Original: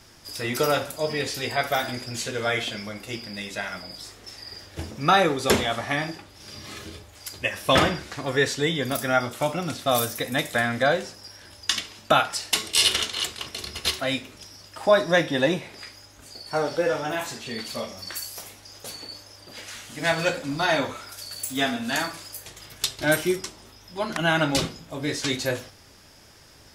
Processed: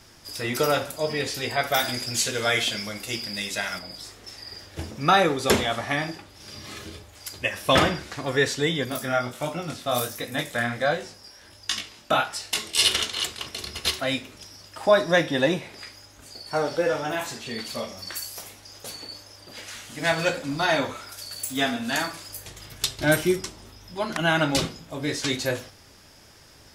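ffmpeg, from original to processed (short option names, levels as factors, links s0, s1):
-filter_complex "[0:a]asettb=1/sr,asplit=3[s0][s1][s2];[s0]atrim=end=1.744[s3];[s1]atrim=start=1.74:end=3.79,asetpts=PTS-STARTPTS,afade=t=in:d=0.004:c=qsin,afade=t=out:st=2.046:d=0.004:c=qsin,highshelf=f=3000:g=9.5[s4];[s2]atrim=start=3.786[s5];[s3][s4]acrossfade=d=0.004:c1=hsin:c2=qsin[s6];[s6][s5]acrossfade=d=0.004:c1=qsin:c2=hsin,asettb=1/sr,asplit=3[s7][s8][s9];[s7]atrim=end=8.854[s10];[s8]atrim=start=8.85:end=12.79,asetpts=PTS-STARTPTS,afade=t=in:d=0.004:c=qsin,afade=t=out:st=3.936:d=0.004:c=qsin,flanger=delay=18:depth=7.2:speed=1.4[s11];[s9]atrim=start=12.786[s12];[s10][s11]acrossfade=d=0.004:c1=hsin:c2=qsin[s13];[s13][s12]acrossfade=d=0.004:c1=qsin:c2=hsin,asettb=1/sr,asplit=3[s14][s15][s16];[s14]atrim=end=22.284[s17];[s15]atrim=start=22.28:end=23.95,asetpts=PTS-STARTPTS,afade=t=in:d=0.004:c=qsin,afade=t=out:st=1.666:d=0.004:c=qsin,lowshelf=f=210:g=6.5[s18];[s16]atrim=start=23.946[s19];[s17][s18]acrossfade=d=0.004:c1=hsin:c2=qsin[s20];[s20][s19]acrossfade=d=0.004:c1=qsin:c2=hsin"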